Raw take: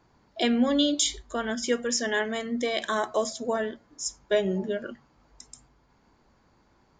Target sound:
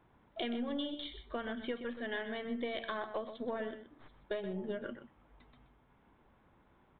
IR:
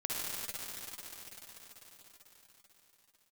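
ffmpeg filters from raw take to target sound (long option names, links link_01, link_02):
-filter_complex "[0:a]acompressor=threshold=-32dB:ratio=6,aeval=exprs='0.126*(cos(1*acos(clip(val(0)/0.126,-1,1)))-cos(1*PI/2))+0.00398*(cos(8*acos(clip(val(0)/0.126,-1,1)))-cos(8*PI/2))':channel_layout=same,asplit=2[link_01][link_02];[link_02]aecho=0:1:126:0.299[link_03];[link_01][link_03]amix=inputs=2:normalize=0,aresample=8000,aresample=44100,volume=-3.5dB"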